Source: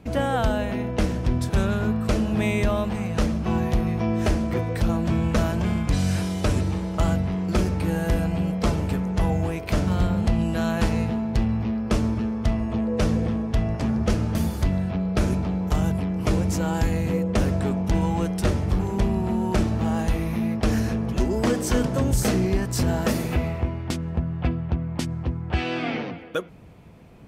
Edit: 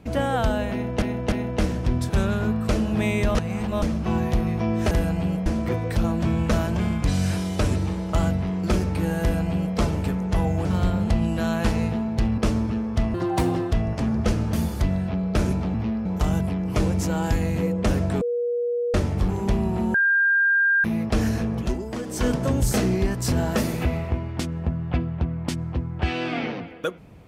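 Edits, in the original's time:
0.72–1.02 s: loop, 3 plays
2.75–3.22 s: reverse
8.06–8.61 s: copy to 4.31 s
9.50–9.82 s: delete
11.55–11.86 s: move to 15.56 s
12.62–13.54 s: speed 158%
17.72–18.45 s: bleep 480 Hz -21.5 dBFS
19.45–20.35 s: bleep 1.6 kHz -16 dBFS
21.10–21.80 s: dip -9 dB, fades 0.26 s

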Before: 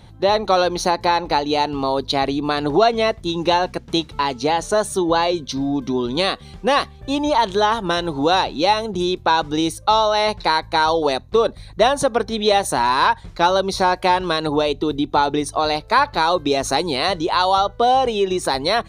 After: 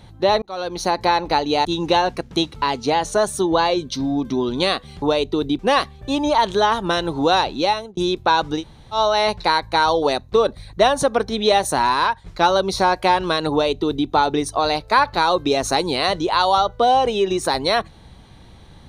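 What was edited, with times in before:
0.42–0.99 s: fade in
1.65–3.22 s: delete
8.45–8.97 s: fade out equal-power
9.59–9.96 s: room tone, crossfade 0.10 s
12.87–13.26 s: fade out linear, to -8 dB
14.51–15.08 s: copy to 6.59 s

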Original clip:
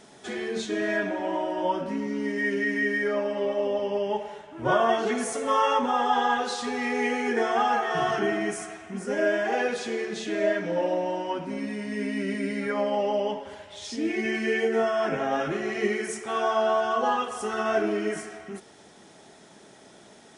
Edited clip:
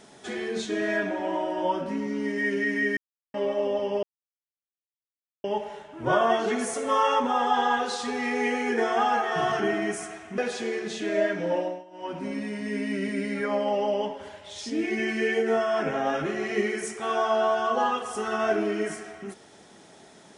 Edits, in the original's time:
2.97–3.34 s: mute
4.03 s: insert silence 1.41 s
8.97–9.64 s: delete
10.82–11.45 s: dip -20.5 dB, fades 0.28 s

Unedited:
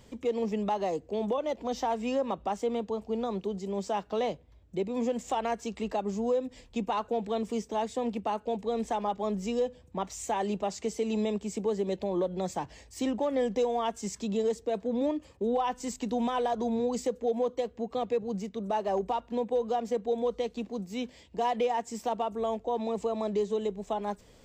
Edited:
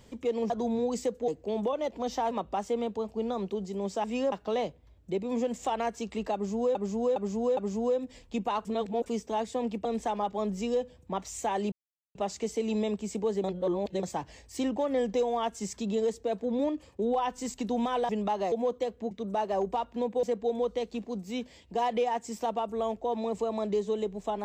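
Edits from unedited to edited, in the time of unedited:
0.50–0.93 s: swap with 16.51–17.29 s
1.96–2.24 s: move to 3.97 s
5.99–6.40 s: loop, 4 plays
7.07–7.48 s: reverse
8.27–8.70 s: delete
10.57 s: insert silence 0.43 s
11.86–12.45 s: reverse
17.88–18.47 s: delete
19.59–19.86 s: delete

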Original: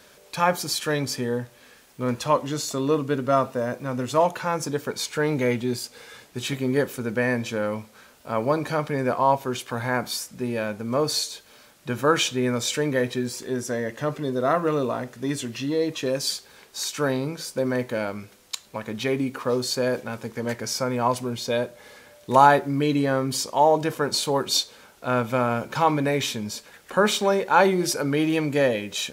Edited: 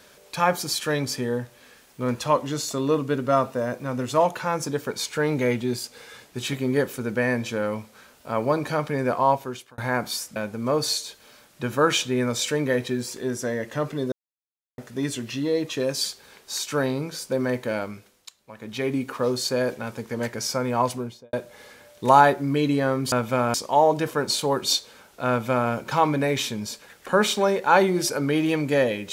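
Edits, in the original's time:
9.29–9.78 s: fade out
10.36–10.62 s: delete
14.38–15.04 s: mute
18.08–19.22 s: dip -14 dB, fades 0.49 s
21.16–21.59 s: studio fade out
25.13–25.55 s: copy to 23.38 s

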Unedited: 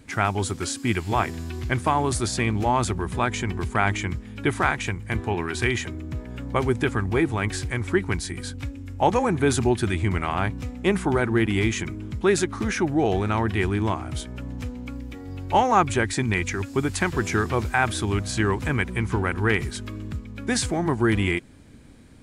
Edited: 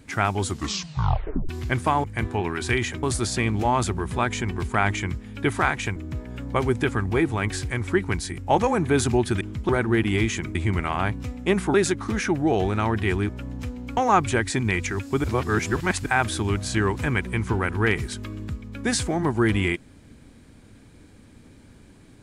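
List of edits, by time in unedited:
0.46 s: tape stop 1.03 s
4.97–5.96 s: move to 2.04 s
8.38–8.90 s: delete
9.93–11.12 s: swap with 11.98–12.26 s
13.81–14.28 s: delete
14.96–15.60 s: delete
16.87–17.69 s: reverse

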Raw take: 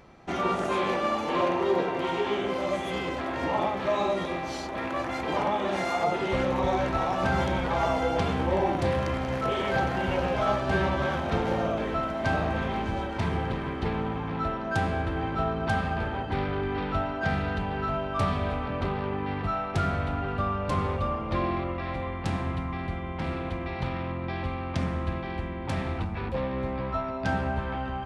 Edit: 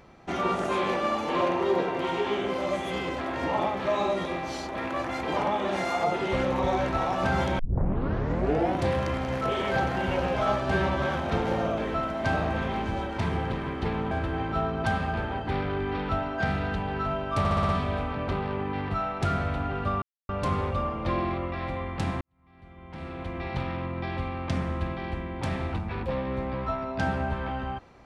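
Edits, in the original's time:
7.59 s: tape start 1.18 s
14.11–14.94 s: delete
18.22 s: stutter 0.06 s, 6 plays
20.55 s: insert silence 0.27 s
22.47–23.71 s: fade in quadratic

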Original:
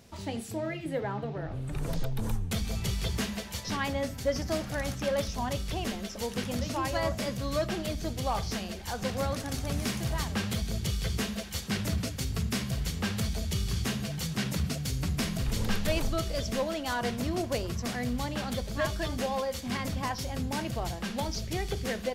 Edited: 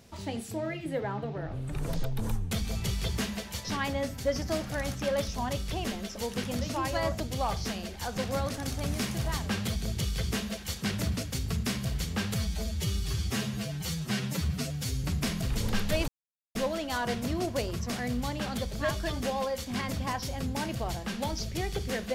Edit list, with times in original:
7.20–8.06 s: delete
13.20–15.00 s: stretch 1.5×
16.04–16.51 s: mute

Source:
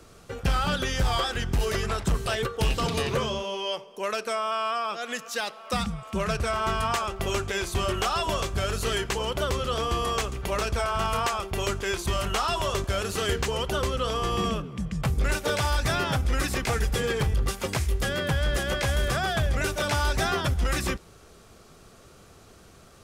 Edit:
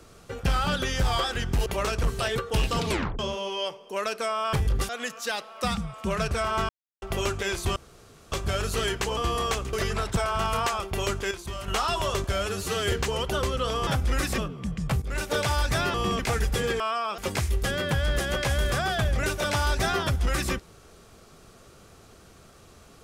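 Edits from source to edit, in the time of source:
1.66–2.10 s: swap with 10.40–10.77 s
2.96 s: tape stop 0.30 s
4.60–4.98 s: swap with 17.20–17.56 s
6.78–7.11 s: mute
7.85–8.41 s: room tone
9.26–9.84 s: delete
11.91–12.28 s: gain -8 dB
12.92–13.32 s: stretch 1.5×
14.27–14.52 s: swap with 16.08–16.59 s
15.16–15.44 s: fade in, from -13.5 dB

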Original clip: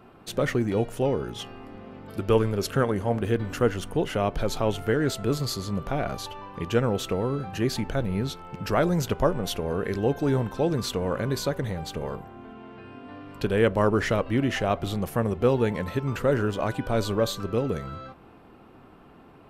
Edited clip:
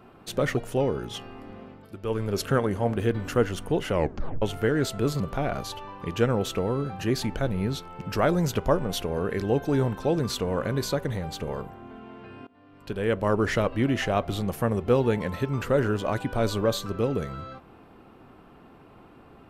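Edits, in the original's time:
0.57–0.82 s: delete
1.85–2.60 s: dip -10.5 dB, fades 0.29 s
4.16 s: tape stop 0.51 s
5.45–5.74 s: delete
13.01–14.08 s: fade in, from -21 dB

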